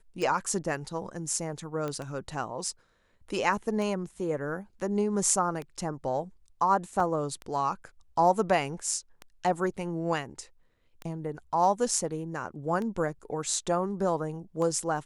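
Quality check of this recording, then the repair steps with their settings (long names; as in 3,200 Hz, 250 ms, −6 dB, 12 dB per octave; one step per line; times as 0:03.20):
scratch tick 33 1/3 rpm
0:01.88: click −21 dBFS
0:07.00: drop-out 2.9 ms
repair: click removal
repair the gap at 0:07.00, 2.9 ms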